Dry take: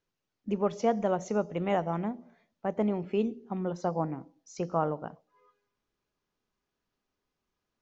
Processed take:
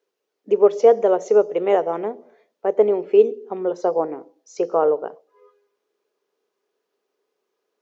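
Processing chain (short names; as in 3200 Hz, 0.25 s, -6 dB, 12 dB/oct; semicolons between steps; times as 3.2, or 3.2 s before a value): resonant high-pass 430 Hz, resonance Q 4.9; gain +4.5 dB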